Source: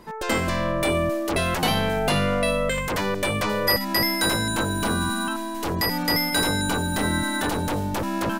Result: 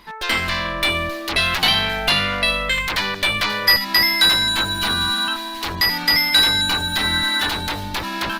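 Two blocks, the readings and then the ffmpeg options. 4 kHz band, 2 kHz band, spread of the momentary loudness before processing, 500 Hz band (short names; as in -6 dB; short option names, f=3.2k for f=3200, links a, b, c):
+11.5 dB, +7.5 dB, 5 LU, -5.0 dB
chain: -af "equalizer=f=125:t=o:w=1:g=-8,equalizer=f=250:t=o:w=1:g=-5,equalizer=f=500:t=o:w=1:g=-9,equalizer=f=2k:t=o:w=1:g=4,equalizer=f=4k:t=o:w=1:g=11,equalizer=f=8k:t=o:w=1:g=-6,volume=3dB" -ar 48000 -c:a libopus -b:a 24k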